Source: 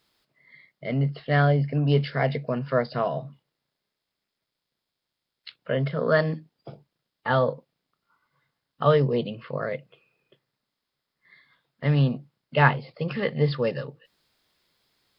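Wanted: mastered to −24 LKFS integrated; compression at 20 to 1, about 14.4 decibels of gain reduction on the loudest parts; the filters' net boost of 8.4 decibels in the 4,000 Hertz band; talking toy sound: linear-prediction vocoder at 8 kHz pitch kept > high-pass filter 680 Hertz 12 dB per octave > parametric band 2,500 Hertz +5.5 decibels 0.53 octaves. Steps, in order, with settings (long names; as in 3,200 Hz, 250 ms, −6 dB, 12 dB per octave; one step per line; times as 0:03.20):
parametric band 4,000 Hz +9 dB
downward compressor 20 to 1, threshold −27 dBFS
linear-prediction vocoder at 8 kHz pitch kept
high-pass filter 680 Hz 12 dB per octave
parametric band 2,500 Hz +5.5 dB 0.53 octaves
level +14 dB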